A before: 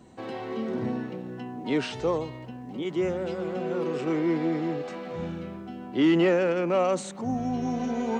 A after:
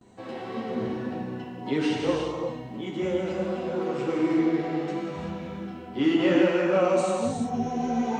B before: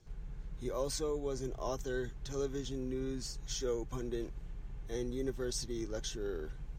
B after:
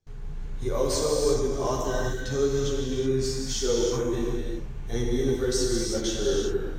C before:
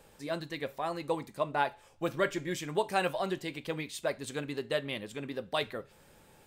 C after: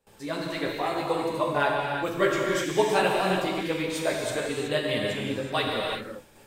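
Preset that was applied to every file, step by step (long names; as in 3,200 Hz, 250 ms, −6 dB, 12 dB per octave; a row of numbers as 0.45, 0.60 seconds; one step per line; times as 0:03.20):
multi-voice chorus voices 2, 1.5 Hz, delay 12 ms, depth 3 ms
noise gate with hold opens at −51 dBFS
reverb whose tail is shaped and stops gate 400 ms flat, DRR −1.5 dB
loudness normalisation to −27 LKFS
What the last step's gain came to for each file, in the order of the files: +0.5, +11.0, +7.0 decibels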